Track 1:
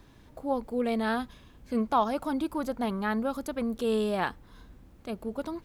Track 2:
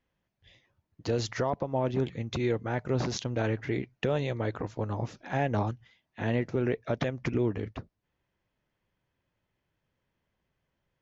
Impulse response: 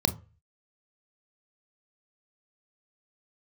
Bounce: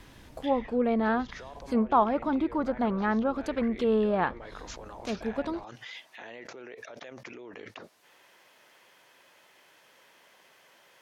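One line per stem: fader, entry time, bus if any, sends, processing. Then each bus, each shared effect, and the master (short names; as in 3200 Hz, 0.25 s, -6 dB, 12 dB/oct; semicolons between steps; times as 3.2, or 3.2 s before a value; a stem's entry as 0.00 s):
+2.5 dB, 0.00 s, no send, dry
-16.0 dB, 0.00 s, no send, HPF 530 Hz 12 dB/oct; fast leveller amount 100%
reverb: off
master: treble ducked by the level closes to 1700 Hz, closed at -23.5 dBFS; bell 10000 Hz +4 dB 3 oct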